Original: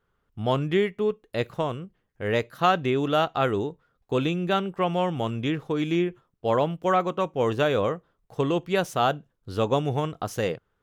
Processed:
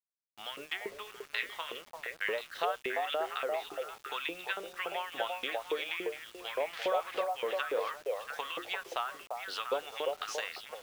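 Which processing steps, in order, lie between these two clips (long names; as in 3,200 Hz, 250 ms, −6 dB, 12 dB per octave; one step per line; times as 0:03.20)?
0:06.73–0:07.24: converter with a step at zero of −28 dBFS
meter weighting curve D
treble cut that deepens with the level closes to 1,100 Hz, closed at −16 dBFS
mains-hum notches 50/100/150/200/250/300/350/400 Hz
downward compressor 6 to 1, threshold −30 dBFS, peak gain reduction 13 dB
auto-filter high-pass saw up 3.5 Hz 410–2,200 Hz
0:00.90–0:01.74: double-tracking delay 24 ms −11.5 dB
echo through a band-pass that steps 345 ms, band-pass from 620 Hz, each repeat 1.4 octaves, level −0.5 dB
bit reduction 8 bits
level −4 dB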